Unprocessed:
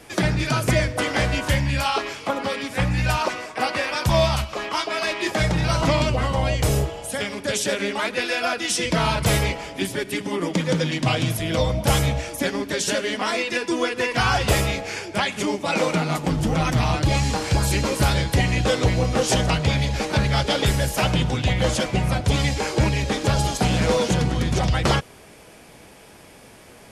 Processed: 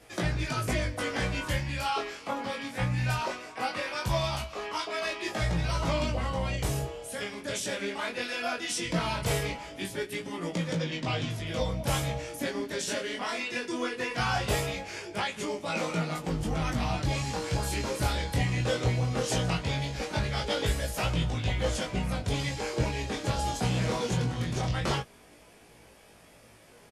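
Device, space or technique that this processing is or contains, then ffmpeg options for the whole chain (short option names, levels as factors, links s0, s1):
double-tracked vocal: -filter_complex "[0:a]asettb=1/sr,asplit=3[s0][s1][s2];[s0]atrim=end=10.764[s3];[s1]atrim=start=10.76:end=11.47,asetpts=PTS-STARTPTS,afade=t=in:d=0.004:c=qsin,afade=t=out:st=0.706:d=0.004:c=qsin,lowpass=6500[s4];[s2]atrim=start=11.466[s5];[s3][s4]acrossfade=d=0.004:c1=hsin:c2=qsin[s6];[s6][s5]acrossfade=d=0.004:c1=qsin:c2=hsin,asplit=2[s7][s8];[s8]adelay=17,volume=0.447[s9];[s7][s9]amix=inputs=2:normalize=0,flanger=delay=18.5:depth=6.8:speed=0.19,volume=0.473"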